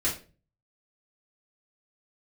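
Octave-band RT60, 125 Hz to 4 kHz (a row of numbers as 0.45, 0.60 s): 0.65, 0.50, 0.40, 0.30, 0.30, 0.30 s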